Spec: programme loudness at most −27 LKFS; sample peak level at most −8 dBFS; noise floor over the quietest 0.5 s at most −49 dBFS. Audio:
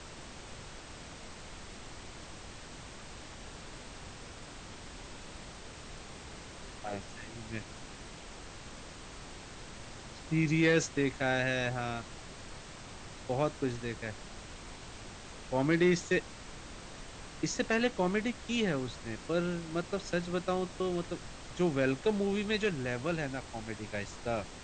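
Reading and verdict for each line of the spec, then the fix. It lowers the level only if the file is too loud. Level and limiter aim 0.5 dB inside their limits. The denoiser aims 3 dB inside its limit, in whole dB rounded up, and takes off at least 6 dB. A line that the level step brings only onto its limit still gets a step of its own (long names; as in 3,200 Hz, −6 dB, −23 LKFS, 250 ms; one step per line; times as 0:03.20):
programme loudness −33.0 LKFS: in spec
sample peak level −15.0 dBFS: in spec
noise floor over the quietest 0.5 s −47 dBFS: out of spec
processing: broadband denoise 6 dB, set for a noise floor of −47 dBFS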